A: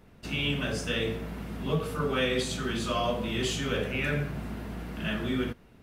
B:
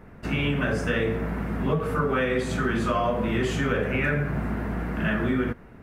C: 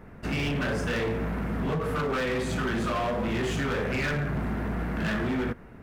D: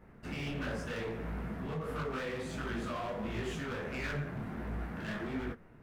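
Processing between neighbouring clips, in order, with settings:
resonant high shelf 2.5 kHz -10 dB, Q 1.5; compression, threshold -29 dBFS, peak gain reduction 7 dB; trim +8.5 dB
hard clipper -25 dBFS, distortion -9 dB
detune thickener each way 51 cents; trim -6 dB

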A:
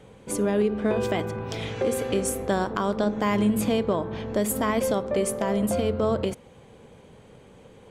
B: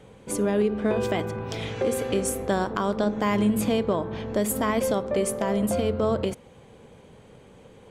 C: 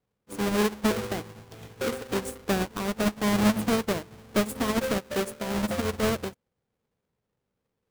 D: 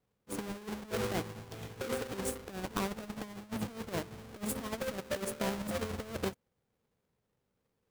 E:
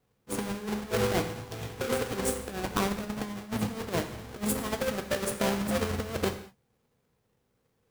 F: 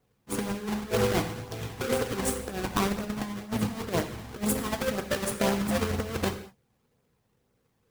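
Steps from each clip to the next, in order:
no audible change
square wave that keeps the level; upward expansion 2.5:1, over -38 dBFS; trim -2 dB
compressor with a negative ratio -31 dBFS, ratio -0.5; trim -5 dB
gated-style reverb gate 240 ms falling, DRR 7 dB; trim +6 dB
flange 2 Hz, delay 0.1 ms, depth 1.1 ms, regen -58%; trim +5.5 dB

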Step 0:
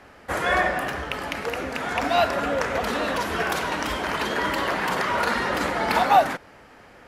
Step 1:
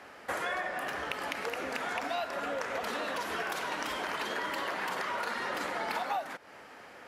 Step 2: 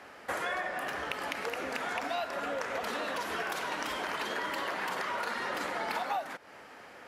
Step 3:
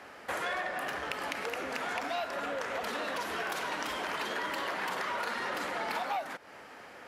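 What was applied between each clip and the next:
high-pass 390 Hz 6 dB/octave; compression 6:1, threshold -32 dBFS, peak gain reduction 18 dB
no audible change
transformer saturation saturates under 2.3 kHz; trim +1 dB

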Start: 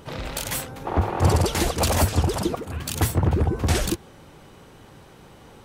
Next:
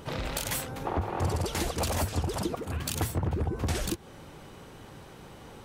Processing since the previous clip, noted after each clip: compression 3:1, threshold -29 dBFS, peak gain reduction 12 dB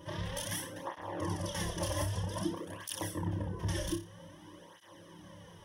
rippled EQ curve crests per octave 1.2, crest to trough 13 dB; on a send: flutter echo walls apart 5.1 m, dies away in 0.32 s; on the sum: cancelling through-zero flanger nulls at 0.52 Hz, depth 4.6 ms; trim -6 dB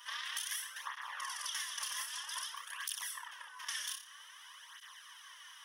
Chebyshev high-pass 1.2 kHz, order 4; compression 5:1, threshold -45 dBFS, peak gain reduction 9.5 dB; trim +8 dB

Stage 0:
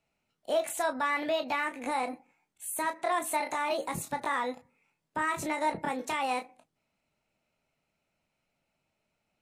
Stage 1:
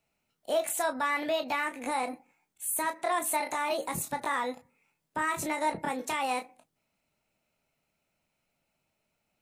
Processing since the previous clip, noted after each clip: treble shelf 9.1 kHz +9 dB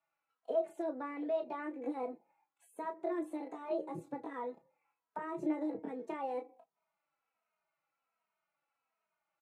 comb 6.1 ms, depth 32%; auto-wah 370–1200 Hz, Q 2.4, down, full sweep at -32 dBFS; endless flanger 2.9 ms -1.3 Hz; trim +4.5 dB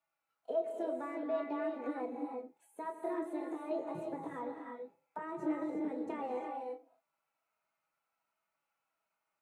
gated-style reverb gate 380 ms rising, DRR 2.5 dB; trim -1.5 dB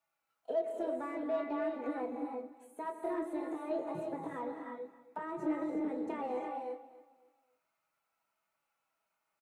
in parallel at -11.5 dB: saturation -39 dBFS, distortion -9 dB; on the sum: feedback delay 273 ms, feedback 31%, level -17 dB

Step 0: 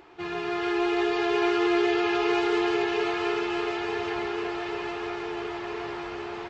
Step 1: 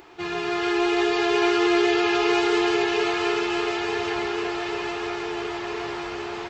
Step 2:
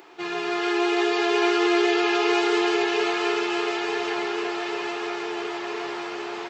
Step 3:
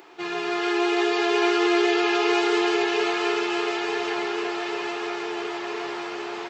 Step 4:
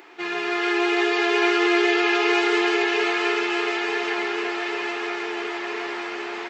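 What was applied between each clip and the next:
treble shelf 5.1 kHz +11 dB; trim +3 dB
high-pass 240 Hz 12 dB/octave
no audible change
ten-band graphic EQ 125 Hz -9 dB, 250 Hz +4 dB, 2 kHz +7 dB; trim -1 dB

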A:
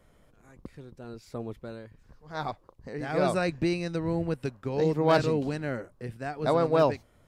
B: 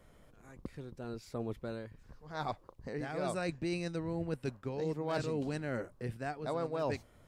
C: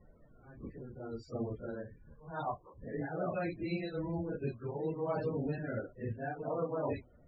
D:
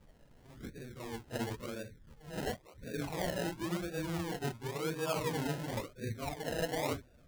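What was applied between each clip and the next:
dynamic bell 8 kHz, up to +5 dB, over -56 dBFS, Q 1.6; reverse; compression 5:1, threshold -33 dBFS, peak gain reduction 14.5 dB; reverse
phase randomisation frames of 100 ms; loudest bins only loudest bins 32
decimation with a swept rate 30×, swing 60% 0.95 Hz

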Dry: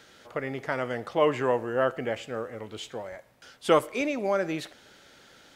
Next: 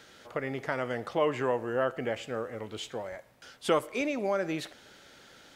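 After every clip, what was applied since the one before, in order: compression 1.5:1, threshold -30 dBFS, peak gain reduction 5.5 dB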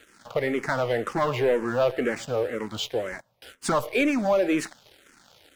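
waveshaping leveller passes 3; barber-pole phaser -2 Hz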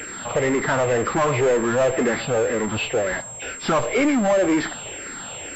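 knee-point frequency compression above 1.9 kHz 1.5:1; power-law waveshaper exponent 0.5; class-D stage that switches slowly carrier 7.5 kHz

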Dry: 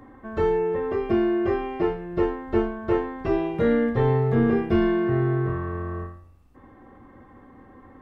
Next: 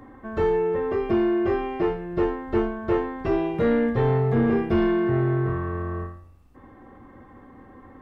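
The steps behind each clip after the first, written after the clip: saturation -15 dBFS, distortion -19 dB; trim +1.5 dB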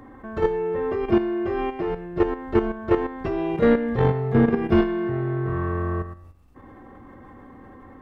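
level held to a coarse grid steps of 10 dB; trim +5 dB

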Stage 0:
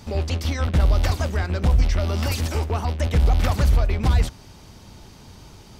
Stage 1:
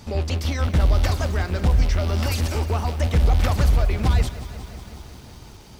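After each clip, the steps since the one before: bit-crushed delay 182 ms, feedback 80%, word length 7-bit, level -15 dB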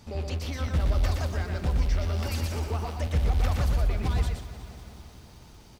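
delay 120 ms -4.5 dB; trim -8.5 dB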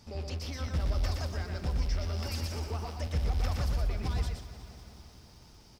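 peaking EQ 5.2 kHz +10 dB 0.26 oct; trim -5.5 dB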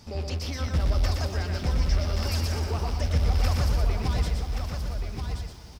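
delay 1128 ms -6.5 dB; trim +6 dB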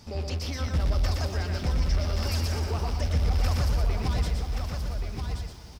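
saturation -15 dBFS, distortion -23 dB

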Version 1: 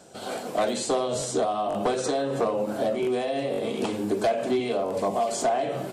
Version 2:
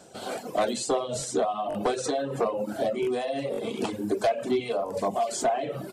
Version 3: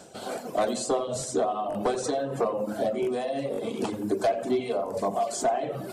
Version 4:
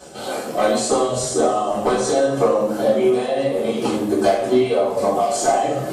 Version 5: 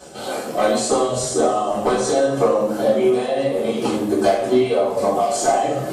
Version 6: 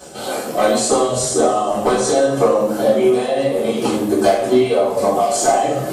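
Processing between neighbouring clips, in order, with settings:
reverb removal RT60 1.1 s
dynamic bell 2.8 kHz, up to -4 dB, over -45 dBFS, Q 1; reverse; upward compressor, threshold -36 dBFS; reverse; filtered feedback delay 86 ms, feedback 62%, low-pass 2.1 kHz, level -13.5 dB
two-slope reverb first 0.59 s, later 3.6 s, from -20 dB, DRR -9.5 dB
no audible change
treble shelf 10 kHz +7 dB; trim +2.5 dB

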